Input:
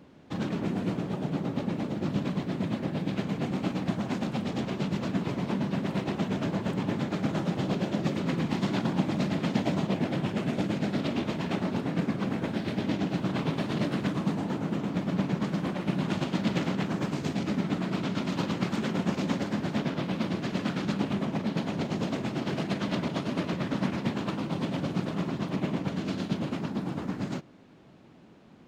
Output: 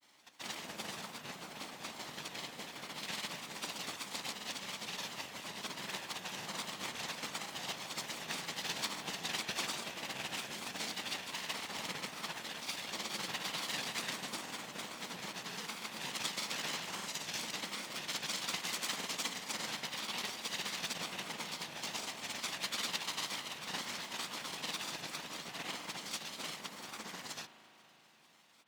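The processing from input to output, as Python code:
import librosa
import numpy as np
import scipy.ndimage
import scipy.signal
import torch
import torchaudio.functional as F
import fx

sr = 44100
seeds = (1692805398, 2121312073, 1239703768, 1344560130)

y = fx.lower_of_two(x, sr, delay_ms=1.0)
y = fx.granulator(y, sr, seeds[0], grain_ms=100.0, per_s=20.0, spray_ms=100.0, spread_st=3)
y = np.diff(y, prepend=0.0)
y = fx.rev_spring(y, sr, rt60_s=3.8, pass_ms=(37,), chirp_ms=55, drr_db=11.5)
y = y * librosa.db_to_amplitude(10.0)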